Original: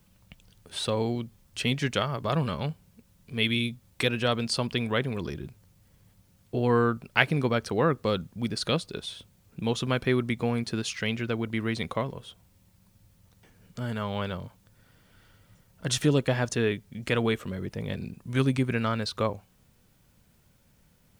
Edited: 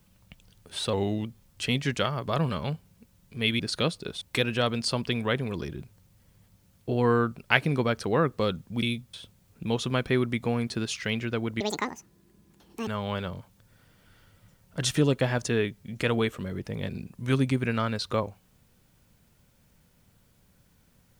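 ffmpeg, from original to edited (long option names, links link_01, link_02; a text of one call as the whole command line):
ffmpeg -i in.wav -filter_complex "[0:a]asplit=9[link_01][link_02][link_03][link_04][link_05][link_06][link_07][link_08][link_09];[link_01]atrim=end=0.934[link_10];[link_02]atrim=start=0.93:end=1.21,asetpts=PTS-STARTPTS,asetrate=39249,aresample=44100,atrim=end_sample=13874,asetpts=PTS-STARTPTS[link_11];[link_03]atrim=start=1.206:end=3.562[link_12];[link_04]atrim=start=8.478:end=9.102[link_13];[link_05]atrim=start=3.868:end=8.482[link_14];[link_06]atrim=start=3.558:end=3.872[link_15];[link_07]atrim=start=9.098:end=11.574[link_16];[link_08]atrim=start=11.57:end=13.94,asetpts=PTS-STARTPTS,asetrate=82467,aresample=44100,atrim=end_sample=55891,asetpts=PTS-STARTPTS[link_17];[link_09]atrim=start=13.936[link_18];[link_10][link_11]acrossfade=duration=0.004:curve1=hsin:curve2=hsin[link_19];[link_19][link_12]acrossfade=duration=0.004:curve1=hsin:curve2=hsin[link_20];[link_20][link_13]acrossfade=duration=0.004:curve1=hsin:curve2=hsin[link_21];[link_21][link_14]acrossfade=duration=0.004:curve1=hsin:curve2=hsin[link_22];[link_22][link_15]acrossfade=duration=0.004:curve1=hsin:curve2=hsin[link_23];[link_23][link_16]acrossfade=duration=0.004:curve1=hsin:curve2=hsin[link_24];[link_24][link_17]acrossfade=duration=0.004:curve1=hsin:curve2=hsin[link_25];[link_25][link_18]acrossfade=duration=0.004:curve1=hsin:curve2=hsin" out.wav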